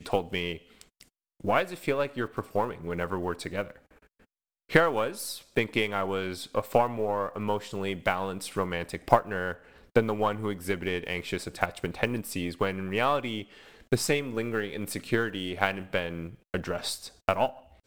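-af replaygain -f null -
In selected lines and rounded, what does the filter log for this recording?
track_gain = +9.2 dB
track_peak = 0.479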